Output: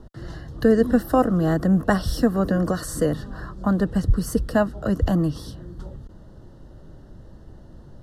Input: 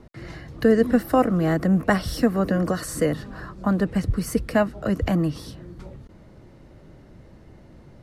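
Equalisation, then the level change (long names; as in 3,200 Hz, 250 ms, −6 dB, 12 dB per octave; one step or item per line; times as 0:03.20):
Butterworth band-reject 2,300 Hz, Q 2.2
low-shelf EQ 60 Hz +10.5 dB
0.0 dB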